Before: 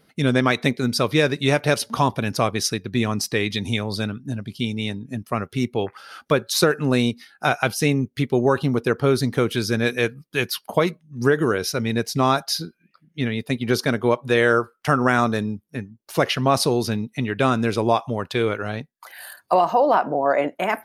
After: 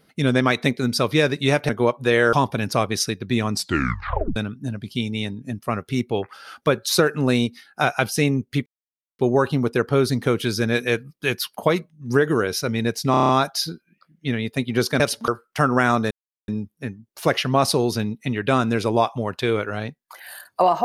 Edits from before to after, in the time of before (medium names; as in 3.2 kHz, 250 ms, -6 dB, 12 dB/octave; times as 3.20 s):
1.69–1.97 s: swap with 13.93–14.57 s
3.18 s: tape stop 0.82 s
8.30 s: insert silence 0.53 s
12.22 s: stutter 0.03 s, 7 plays
15.40 s: insert silence 0.37 s